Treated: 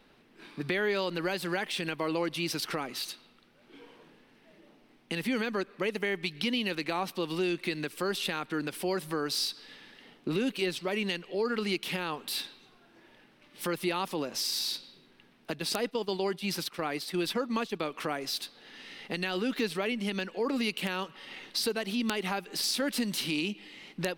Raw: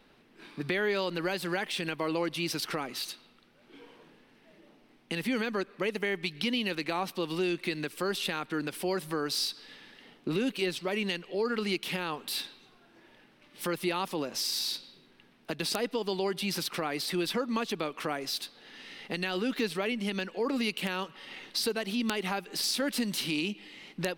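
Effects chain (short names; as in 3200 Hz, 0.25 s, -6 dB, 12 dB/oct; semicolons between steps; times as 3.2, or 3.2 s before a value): 15.59–17.8 gate -33 dBFS, range -10 dB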